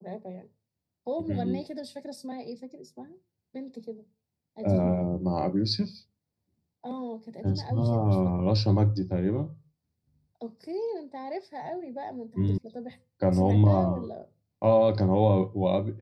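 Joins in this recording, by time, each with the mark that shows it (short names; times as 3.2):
12.58 sound cut off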